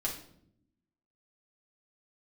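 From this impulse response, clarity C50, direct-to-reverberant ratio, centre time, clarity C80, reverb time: 7.0 dB, −4.0 dB, 23 ms, 11.5 dB, non-exponential decay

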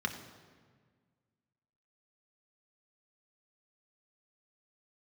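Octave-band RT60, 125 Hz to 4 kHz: 2.2, 2.1, 1.7, 1.6, 1.5, 1.2 seconds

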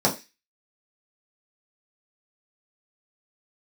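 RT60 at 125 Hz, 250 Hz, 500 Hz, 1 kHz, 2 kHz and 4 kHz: 0.20, 0.25, 0.25, 0.25, 0.35, 0.40 seconds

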